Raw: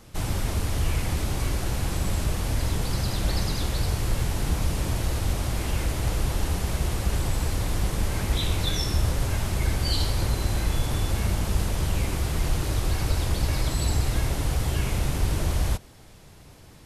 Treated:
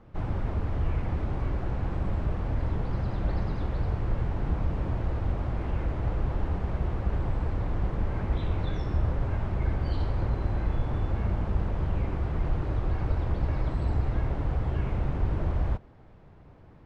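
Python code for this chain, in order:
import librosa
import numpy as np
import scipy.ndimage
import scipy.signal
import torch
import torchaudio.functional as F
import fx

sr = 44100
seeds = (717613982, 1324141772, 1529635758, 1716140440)

y = scipy.signal.sosfilt(scipy.signal.butter(2, 1400.0, 'lowpass', fs=sr, output='sos'), x)
y = y * 10.0 ** (-2.5 / 20.0)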